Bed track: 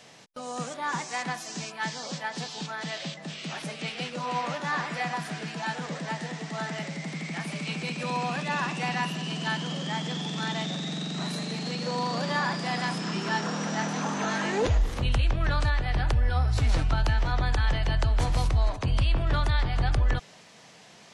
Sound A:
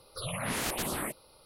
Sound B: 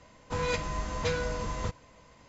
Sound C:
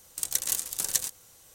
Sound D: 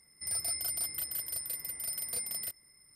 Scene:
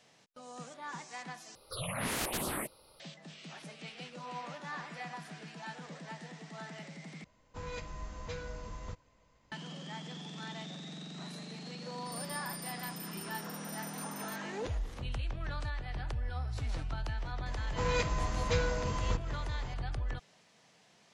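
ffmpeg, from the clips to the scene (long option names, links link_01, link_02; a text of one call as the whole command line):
ffmpeg -i bed.wav -i cue0.wav -i cue1.wav -i cue2.wav -i cue3.wav -filter_complex "[2:a]asplit=2[link_01][link_02];[0:a]volume=-12.5dB[link_03];[link_01]lowshelf=frequency=67:gain=7[link_04];[link_02]acompressor=mode=upward:threshold=-37dB:ratio=2.5:attack=3.2:release=140:knee=2.83:detection=peak[link_05];[link_03]asplit=3[link_06][link_07][link_08];[link_06]atrim=end=1.554[link_09];[1:a]atrim=end=1.45,asetpts=PTS-STARTPTS,volume=-2dB[link_10];[link_07]atrim=start=2.996:end=7.244[link_11];[link_04]atrim=end=2.28,asetpts=PTS-STARTPTS,volume=-12.5dB[link_12];[link_08]atrim=start=9.516[link_13];[4:a]atrim=end=2.95,asetpts=PTS-STARTPTS,volume=-11.5dB,afade=type=in:duration=0.004:curve=hsin,afade=type=out:start_time=2.946:duration=0.004:curve=hsin,adelay=11850[link_14];[link_05]atrim=end=2.28,asetpts=PTS-STARTPTS,volume=-1.5dB,afade=type=in:duration=0.004:curve=hsin,afade=type=out:start_time=2.276:duration=0.004:curve=hsin,adelay=17460[link_15];[link_09][link_10]acrossfade=duration=0.004:curve1=hsin:curve2=hsin[link_16];[link_16][link_11]acrossfade=duration=0.004:curve1=hsin:curve2=hsin[link_17];[link_17][link_12]acrossfade=duration=0.004:curve1=hsin:curve2=hsin[link_18];[link_18][link_13]acrossfade=duration=0.004:curve1=hsin:curve2=hsin[link_19];[link_19][link_14][link_15]amix=inputs=3:normalize=0" out.wav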